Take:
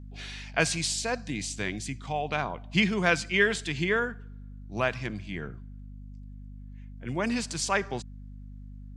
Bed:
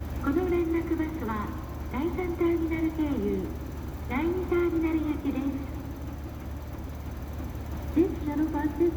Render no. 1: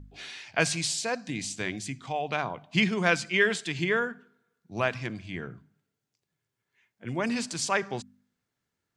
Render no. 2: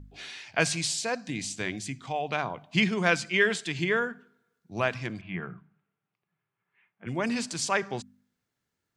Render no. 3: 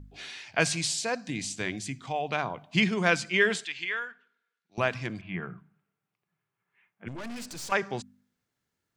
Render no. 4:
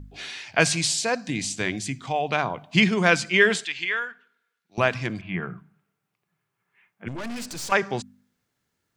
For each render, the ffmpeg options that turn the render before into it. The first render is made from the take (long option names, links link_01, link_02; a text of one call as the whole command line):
ffmpeg -i in.wav -af "bandreject=frequency=50:width_type=h:width=4,bandreject=frequency=100:width_type=h:width=4,bandreject=frequency=150:width_type=h:width=4,bandreject=frequency=200:width_type=h:width=4,bandreject=frequency=250:width_type=h:width=4" out.wav
ffmpeg -i in.wav -filter_complex "[0:a]asettb=1/sr,asplit=3[link_01][link_02][link_03];[link_01]atrim=end=5.214[link_04];[link_02]atrim=start=5.21:end=7.07,asetpts=PTS-STARTPTS,afade=type=in:duration=0.004:curve=qsin,afade=type=out:start_time=1.856:duration=0.004:curve=qsin,highpass=130,equalizer=frequency=180:width_type=q:width=4:gain=8,equalizer=frequency=260:width_type=q:width=4:gain=-8,equalizer=frequency=510:width_type=q:width=4:gain=-4,equalizer=frequency=800:width_type=q:width=4:gain=4,equalizer=frequency=1200:width_type=q:width=4:gain=8,equalizer=frequency=2500:width_type=q:width=4:gain=3,lowpass=frequency=2900:width=0.5412,lowpass=frequency=2900:width=1.3066[link_05];[link_03]atrim=start=7.066[link_06];[link_04][link_05]acrossfade=duration=0.004:curve1=hsin:curve2=qsin[link_07];[link_07][link_06]acrossfade=duration=0.004:curve1=qsin:curve2=hsin" out.wav
ffmpeg -i in.wav -filter_complex "[0:a]asettb=1/sr,asplit=3[link_01][link_02][link_03];[link_01]atrim=end=3.654[link_04];[link_02]atrim=start=3.65:end=4.78,asetpts=PTS-STARTPTS,afade=type=in:duration=0.004:curve=qsin,afade=type=out:start_time=1.126:duration=0.004:curve=qsin,bandpass=frequency=2600:width_type=q:width=1.1[link_05];[link_03]atrim=start=4.776[link_06];[link_04][link_05]acrossfade=duration=0.004:curve1=hsin:curve2=qsin[link_07];[link_07][link_06]acrossfade=duration=0.004:curve1=qsin:curve2=hsin,asettb=1/sr,asplit=3[link_08][link_09][link_10];[link_08]atrim=end=7.084[link_11];[link_09]atrim=start=7.08:end=7.72,asetpts=PTS-STARTPTS,afade=type=in:duration=0.004:curve=qsin,afade=type=out:start_time=0.636:duration=0.004:curve=qsin,aeval=exprs='(tanh(70.8*val(0)+0.6)-tanh(0.6))/70.8':channel_layout=same[link_12];[link_10]atrim=start=7.716[link_13];[link_11][link_12]acrossfade=duration=0.004:curve1=hsin:curve2=qsin[link_14];[link_14][link_13]acrossfade=duration=0.004:curve1=qsin:curve2=hsin" out.wav
ffmpeg -i in.wav -af "volume=5.5dB,alimiter=limit=-3dB:level=0:latency=1" out.wav